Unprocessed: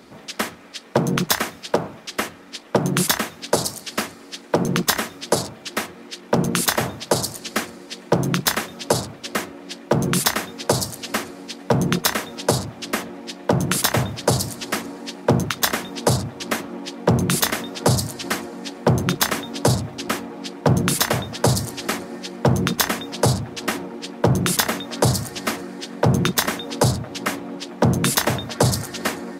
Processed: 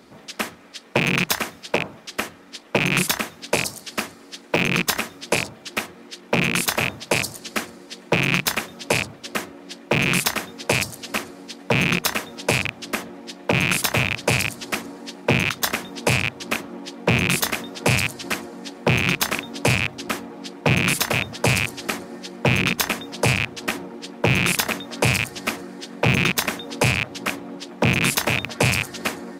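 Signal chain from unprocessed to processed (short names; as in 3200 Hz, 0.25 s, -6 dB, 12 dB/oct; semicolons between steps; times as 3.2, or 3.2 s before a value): rattling part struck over -28 dBFS, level -5 dBFS; gain -3 dB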